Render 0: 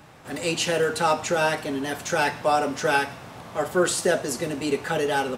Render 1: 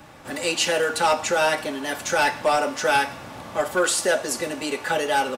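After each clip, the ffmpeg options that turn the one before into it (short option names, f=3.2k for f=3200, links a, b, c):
-filter_complex "[0:a]aecho=1:1:3.5:0.31,acrossover=split=440|2300[a][b][c];[a]acompressor=threshold=-38dB:ratio=6[d];[b]volume=18.5dB,asoftclip=hard,volume=-18.5dB[e];[d][e][c]amix=inputs=3:normalize=0,volume=3dB"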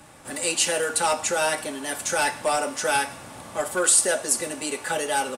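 -af "equalizer=f=9.1k:t=o:w=0.69:g=14,volume=-3.5dB"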